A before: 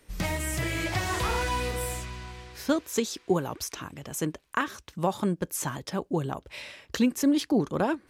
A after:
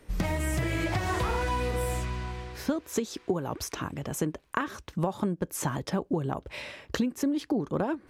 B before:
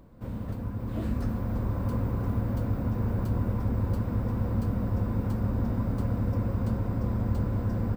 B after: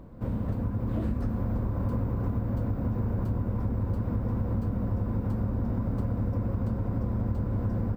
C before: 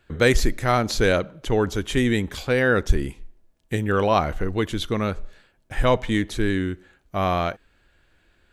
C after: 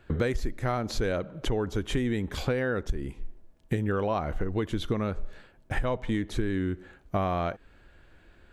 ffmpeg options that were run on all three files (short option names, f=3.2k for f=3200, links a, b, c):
-af "highshelf=f=2k:g=-9,acompressor=threshold=-31dB:ratio=10,volume=6.5dB"